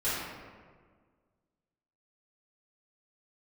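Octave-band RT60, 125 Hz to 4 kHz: 1.9 s, 1.9 s, 1.8 s, 1.5 s, 1.3 s, 0.90 s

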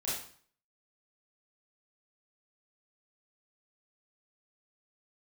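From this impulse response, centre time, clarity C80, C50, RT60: 55 ms, 6.5 dB, 1.0 dB, 0.50 s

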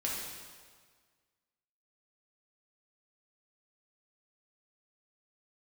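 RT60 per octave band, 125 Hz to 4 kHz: 1.7 s, 1.6 s, 1.7 s, 1.7 s, 1.5 s, 1.5 s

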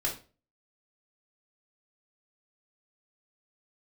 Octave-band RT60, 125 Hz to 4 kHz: 0.45 s, 0.40 s, 0.40 s, 0.30 s, 0.30 s, 0.30 s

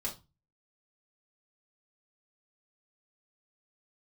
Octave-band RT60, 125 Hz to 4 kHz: 0.50 s, 0.35 s, 0.25 s, 0.30 s, 0.20 s, 0.25 s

